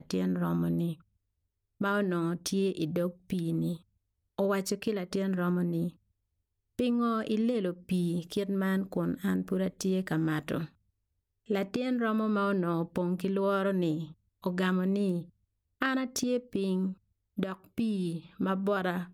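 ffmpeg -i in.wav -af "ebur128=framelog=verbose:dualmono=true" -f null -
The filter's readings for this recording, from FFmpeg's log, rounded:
Integrated loudness:
  I:         -28.2 LUFS
  Threshold: -38.5 LUFS
Loudness range:
  LRA:         2.3 LU
  Threshold: -48.8 LUFS
  LRA low:   -29.9 LUFS
  LRA high:  -27.6 LUFS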